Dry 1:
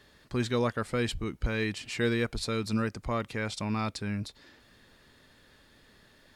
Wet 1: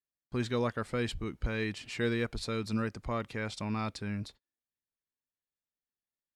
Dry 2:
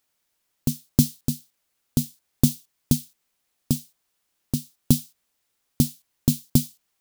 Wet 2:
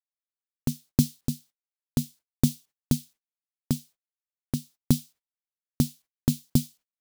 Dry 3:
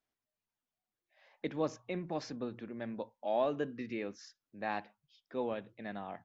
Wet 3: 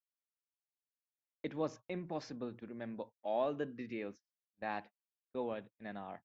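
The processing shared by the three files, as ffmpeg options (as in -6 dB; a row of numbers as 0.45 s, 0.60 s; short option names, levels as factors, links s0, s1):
-af "agate=range=0.00794:threshold=0.00501:ratio=16:detection=peak,highshelf=f=6400:g=-5,volume=0.708"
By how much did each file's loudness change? -3.0 LU, -4.0 LU, -3.0 LU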